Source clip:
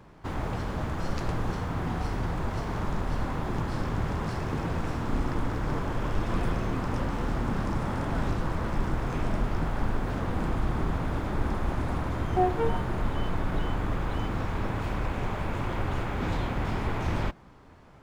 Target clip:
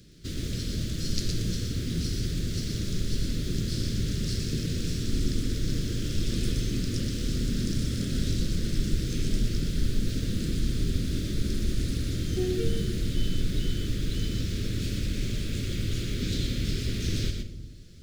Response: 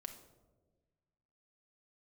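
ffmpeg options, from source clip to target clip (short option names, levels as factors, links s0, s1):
-filter_complex "[0:a]asuperstop=centerf=880:order=4:qfactor=0.53,highshelf=f=3100:t=q:w=1.5:g=10.5,asplit=2[s0][s1];[1:a]atrim=start_sample=2205,adelay=120[s2];[s1][s2]afir=irnorm=-1:irlink=0,volume=0.944[s3];[s0][s3]amix=inputs=2:normalize=0"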